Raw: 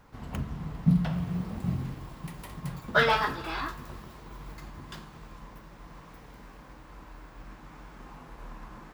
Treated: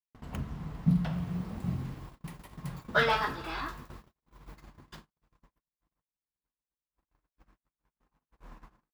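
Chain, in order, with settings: gate -41 dBFS, range -56 dB; trim -3 dB

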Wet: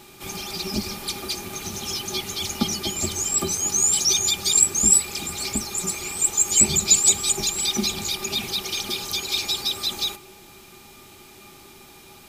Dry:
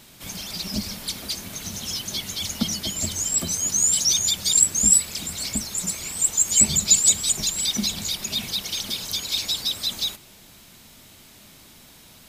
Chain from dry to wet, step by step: small resonant body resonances 380/820/1200/2400 Hz, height 17 dB, ringing for 95 ms

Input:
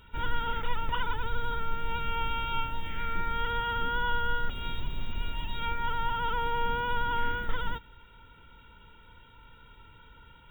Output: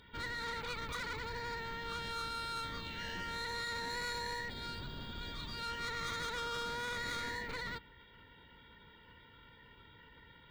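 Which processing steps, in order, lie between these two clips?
comb of notches 1.3 kHz; saturation -35.5 dBFS, distortion -9 dB; formant shift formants +4 st; trim -1 dB

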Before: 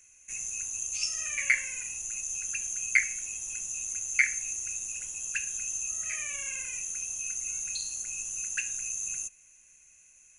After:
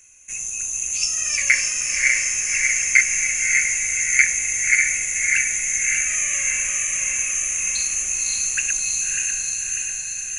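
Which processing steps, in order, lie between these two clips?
backward echo that repeats 298 ms, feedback 74%, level -4 dB; echo that smears into a reverb 595 ms, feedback 52%, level -4 dB; trim +7.5 dB

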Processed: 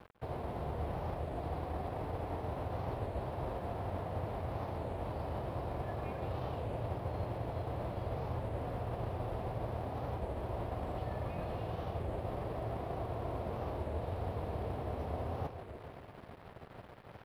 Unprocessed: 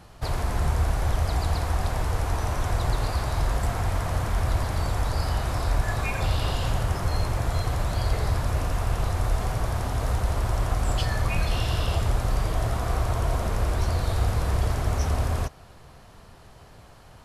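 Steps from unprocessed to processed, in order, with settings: formants flattened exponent 0.6; high-pass 100 Hz 12 dB/octave; high-order bell 2.9 kHz -14 dB 2.9 oct; reverse; compression 4:1, threshold -40 dBFS, peak gain reduction 14 dB; reverse; bit crusher 8-bit; distance through air 410 m; multi-head delay 145 ms, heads first and second, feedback 49%, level -13 dB; warped record 33 1/3 rpm, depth 160 cents; trim +3 dB

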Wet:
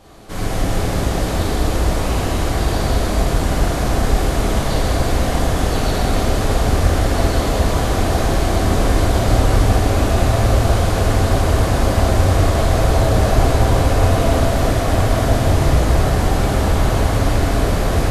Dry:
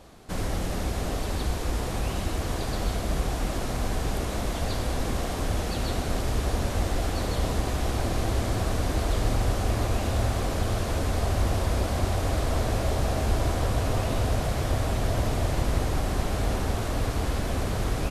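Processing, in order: plate-style reverb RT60 3.7 s, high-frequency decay 0.6×, DRR -8 dB; trim +2 dB

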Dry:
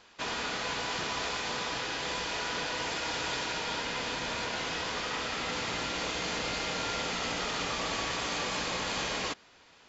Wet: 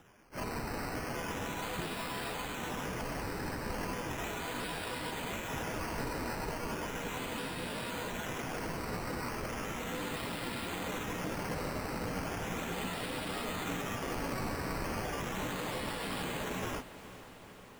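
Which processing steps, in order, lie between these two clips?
high-pass 150 Hz 12 dB/octave; plain phase-vocoder stretch 1.8×; decimation with a swept rate 10×, swing 60% 0.36 Hz; bass shelf 330 Hz +11 dB; echo that smears into a reverb 465 ms, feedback 69%, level -15 dB; trim -4 dB

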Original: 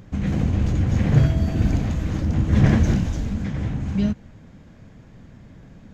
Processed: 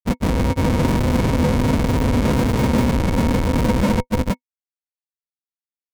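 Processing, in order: Schmitt trigger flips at -26.5 dBFS; granulator, grains 20 per s, spray 485 ms; small resonant body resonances 250/500/940/2200 Hz, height 11 dB, ringing for 70 ms; trim +3.5 dB

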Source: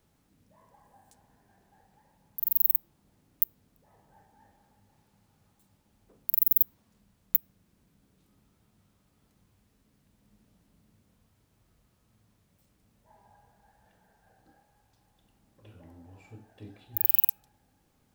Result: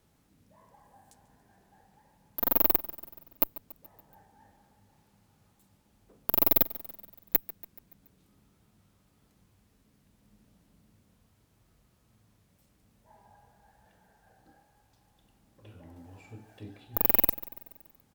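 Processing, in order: Chebyshev shaper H 6 -17 dB, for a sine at -3 dBFS; sine folder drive 3 dB, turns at -1.5 dBFS; on a send: feedback delay 142 ms, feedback 56%, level -18 dB; 15.96–16.78 s: on the sum: tape noise reduction on one side only encoder only; trim -5.5 dB

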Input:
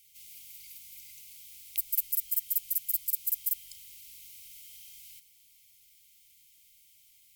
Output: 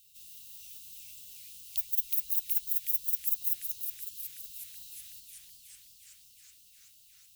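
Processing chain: formant shift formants +4 st; modulated delay 370 ms, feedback 73%, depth 183 cents, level -4.5 dB

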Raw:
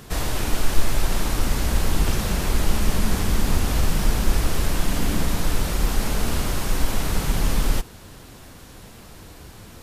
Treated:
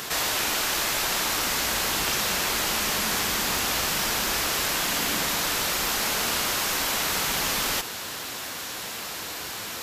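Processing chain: high-pass 1.4 kHz 6 dB/octave; peaking EQ 9.4 kHz -7 dB 0.27 oct; level flattener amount 50%; trim +6.5 dB

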